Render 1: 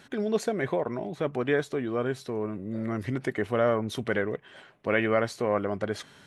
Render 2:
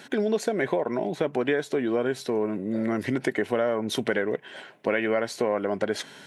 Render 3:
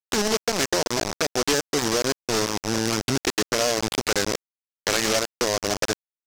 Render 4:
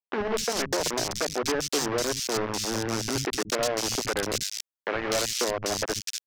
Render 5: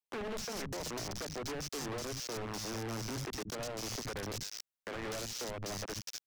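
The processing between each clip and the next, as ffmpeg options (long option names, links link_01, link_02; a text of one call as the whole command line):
ffmpeg -i in.wav -af "highpass=200,bandreject=frequency=1200:width=6.4,acompressor=threshold=-29dB:ratio=6,volume=8dB" out.wav
ffmpeg -i in.wav -af "equalizer=frequency=100:width=4.3:gain=14,aresample=11025,acrusher=bits=3:mix=0:aa=0.000001,aresample=44100,aeval=exprs='0.0944*(abs(mod(val(0)/0.0944+3,4)-2)-1)':channel_layout=same,volume=9dB" out.wav
ffmpeg -i in.wav -filter_complex "[0:a]acrossover=split=200|2500[link_01][link_02][link_03];[link_01]adelay=70[link_04];[link_03]adelay=250[link_05];[link_04][link_02][link_05]amix=inputs=3:normalize=0,volume=-3dB" out.wav
ffmpeg -i in.wav -filter_complex "[0:a]acrossover=split=210[link_01][link_02];[link_02]acompressor=threshold=-30dB:ratio=10[link_03];[link_01][link_03]amix=inputs=2:normalize=0,volume=35.5dB,asoftclip=hard,volume=-35.5dB,volume=-1.5dB" out.wav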